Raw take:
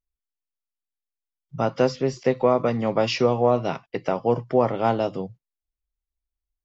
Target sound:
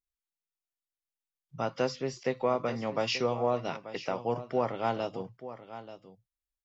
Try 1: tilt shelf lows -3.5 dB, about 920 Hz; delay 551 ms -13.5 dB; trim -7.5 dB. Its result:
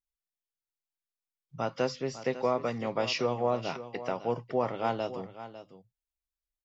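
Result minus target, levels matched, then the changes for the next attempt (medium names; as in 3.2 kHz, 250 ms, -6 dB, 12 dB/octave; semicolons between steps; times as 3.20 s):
echo 334 ms early
change: delay 885 ms -13.5 dB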